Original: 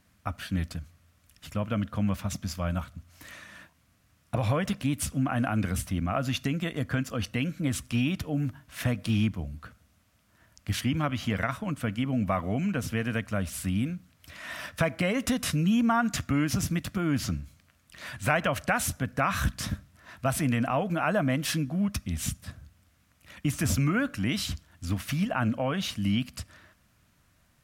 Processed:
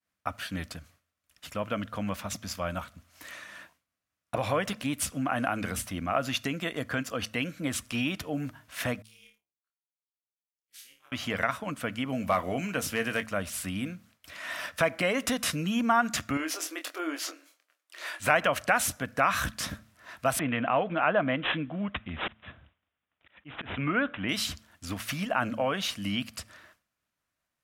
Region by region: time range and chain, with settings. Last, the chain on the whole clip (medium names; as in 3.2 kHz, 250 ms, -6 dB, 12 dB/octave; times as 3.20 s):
9.02–11.12 s: pre-emphasis filter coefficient 0.97 + feedback comb 71 Hz, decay 0.42 s, mix 100% + AM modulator 250 Hz, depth 85%
12.09–13.26 s: treble shelf 3.9 kHz +6 dB + overload inside the chain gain 16 dB + doubling 22 ms -10.5 dB
16.37–18.20 s: compression 1.5:1, threshold -31 dBFS + brick-wall FIR high-pass 280 Hz + doubling 25 ms -7 dB
20.39–24.29 s: slow attack 218 ms + careless resampling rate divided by 6×, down none, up filtered
whole clip: tone controls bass -12 dB, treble -1 dB; de-hum 109.4 Hz, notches 2; expander -57 dBFS; trim +2.5 dB